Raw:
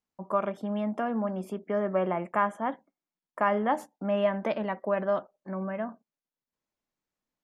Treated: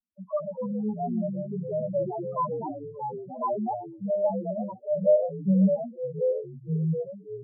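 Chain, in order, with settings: 5.04–5.75 s: waveshaping leveller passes 5; loudest bins only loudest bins 1; ever faster or slower copies 184 ms, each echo -3 st, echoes 3, each echo -6 dB; trim +6 dB

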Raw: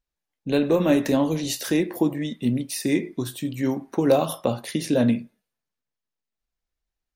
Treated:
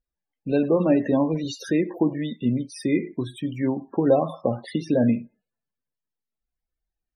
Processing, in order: loudest bins only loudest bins 32; low-pass that closes with the level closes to 3 kHz, closed at -20.5 dBFS

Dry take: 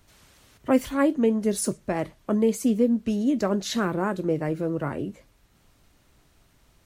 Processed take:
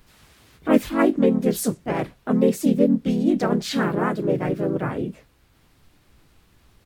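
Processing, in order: graphic EQ with 31 bands 630 Hz -4 dB, 6.3 kHz -7 dB, 10 kHz -4 dB; harmony voices -7 st -15 dB, -3 st -3 dB, +3 st -1 dB

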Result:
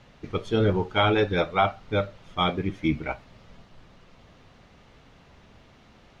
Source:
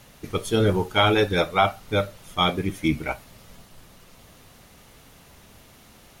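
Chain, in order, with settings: distance through air 170 m; trim -1.5 dB

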